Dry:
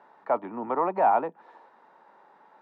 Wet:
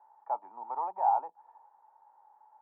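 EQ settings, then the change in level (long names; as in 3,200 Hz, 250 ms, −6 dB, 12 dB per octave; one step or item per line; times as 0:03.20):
resonant band-pass 850 Hz, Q 8.3
0.0 dB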